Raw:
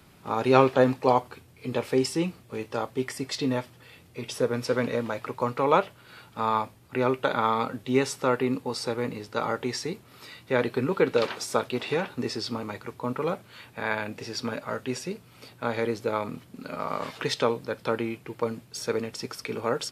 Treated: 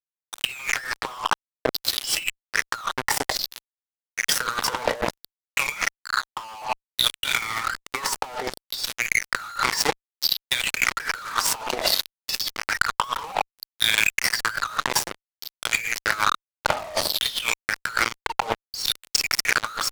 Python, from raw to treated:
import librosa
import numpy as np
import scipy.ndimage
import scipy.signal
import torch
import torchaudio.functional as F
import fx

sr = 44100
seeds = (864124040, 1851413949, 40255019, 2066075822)

y = fx.filter_lfo_highpass(x, sr, shape='saw_down', hz=0.59, low_hz=610.0, high_hz=5000.0, q=7.1)
y = fx.room_shoebox(y, sr, seeds[0], volume_m3=380.0, walls='furnished', distance_m=0.54)
y = fx.noise_reduce_blind(y, sr, reduce_db=15)
y = fx.fuzz(y, sr, gain_db=33.0, gate_db=-35.0)
y = fx.over_compress(y, sr, threshold_db=-24.0, ratio=-0.5)